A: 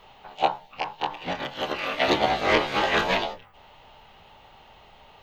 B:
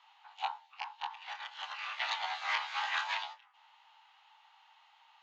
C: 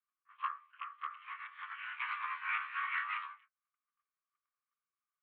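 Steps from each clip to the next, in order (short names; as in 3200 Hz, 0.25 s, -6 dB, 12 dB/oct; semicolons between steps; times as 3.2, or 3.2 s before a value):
Chebyshev band-pass 850–7300 Hz, order 4; gain -9 dB
mistuned SSB +290 Hz 350–2200 Hz; gate -59 dBFS, range -32 dB; attack slew limiter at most 540 dB/s; gain -1 dB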